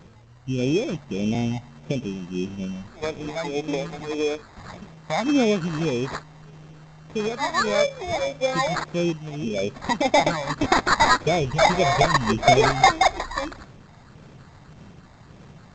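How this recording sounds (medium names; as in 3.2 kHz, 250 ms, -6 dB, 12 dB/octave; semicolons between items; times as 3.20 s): phasing stages 12, 1.7 Hz, lowest notch 380–2300 Hz; aliases and images of a low sample rate 2.9 kHz, jitter 0%; G.722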